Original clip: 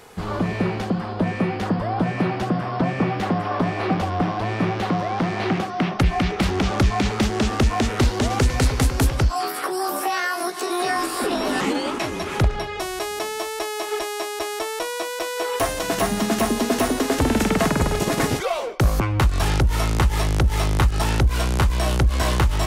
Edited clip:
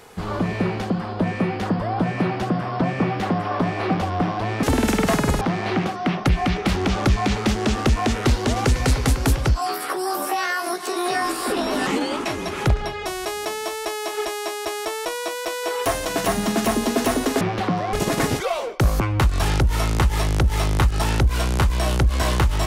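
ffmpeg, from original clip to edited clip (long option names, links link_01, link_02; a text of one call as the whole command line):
ffmpeg -i in.wav -filter_complex "[0:a]asplit=5[link_01][link_02][link_03][link_04][link_05];[link_01]atrim=end=4.632[link_06];[link_02]atrim=start=17.148:end=17.932[link_07];[link_03]atrim=start=5.148:end=17.152[link_08];[link_04]atrim=start=4.628:end=5.152[link_09];[link_05]atrim=start=17.928[link_10];[link_06][link_07]acrossfade=duration=0.004:curve1=hsin:curve2=hsin[link_11];[link_11][link_08]acrossfade=duration=0.004:curve1=hsin:curve2=hsin[link_12];[link_12][link_09]acrossfade=duration=0.004:curve1=hsin:curve2=hsin[link_13];[link_13][link_10]acrossfade=duration=0.004:curve1=hsin:curve2=hsin" out.wav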